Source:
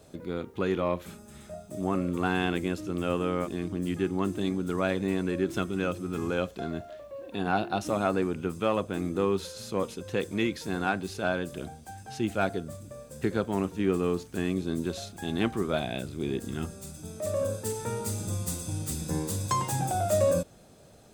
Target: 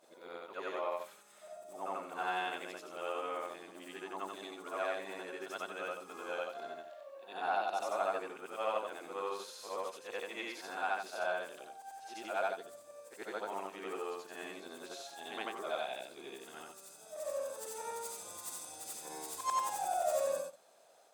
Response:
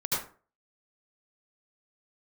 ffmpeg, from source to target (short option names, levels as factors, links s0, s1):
-af "afftfilt=real='re':imag='-im':win_size=8192:overlap=0.75,highpass=f=710:t=q:w=1.6,volume=0.708"